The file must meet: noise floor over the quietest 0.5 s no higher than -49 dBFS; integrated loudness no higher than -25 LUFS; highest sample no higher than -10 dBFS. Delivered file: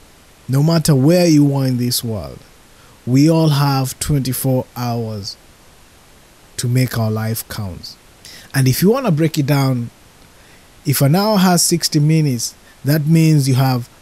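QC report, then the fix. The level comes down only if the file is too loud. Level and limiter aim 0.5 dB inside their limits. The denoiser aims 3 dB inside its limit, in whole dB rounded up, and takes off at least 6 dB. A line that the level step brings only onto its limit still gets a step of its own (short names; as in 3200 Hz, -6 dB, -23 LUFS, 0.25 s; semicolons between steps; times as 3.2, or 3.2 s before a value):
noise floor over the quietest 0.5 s -46 dBFS: fail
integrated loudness -15.5 LUFS: fail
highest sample -3.5 dBFS: fail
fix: gain -10 dB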